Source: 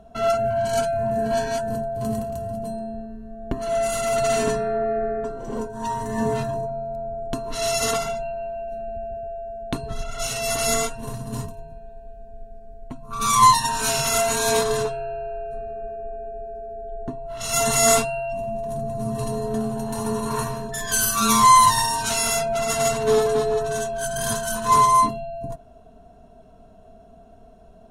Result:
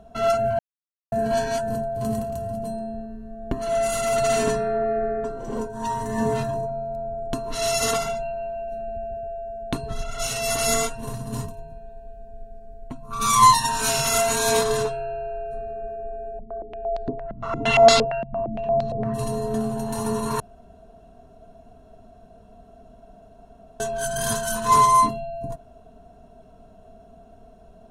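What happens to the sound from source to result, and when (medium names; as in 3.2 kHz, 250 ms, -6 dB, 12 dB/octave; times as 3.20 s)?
0.59–1.12 s: mute
16.39–19.14 s: step-sequenced low-pass 8.7 Hz 210–4300 Hz
20.40–23.80 s: room tone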